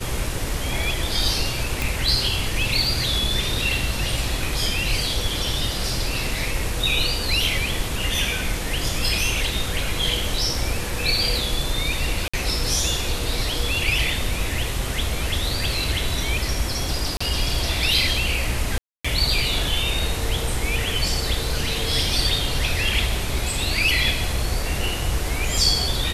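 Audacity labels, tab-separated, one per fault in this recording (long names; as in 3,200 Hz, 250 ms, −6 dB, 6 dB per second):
1.820000	1.820000	click
12.280000	12.340000	drop-out 55 ms
17.170000	17.200000	drop-out 35 ms
18.780000	19.050000	drop-out 265 ms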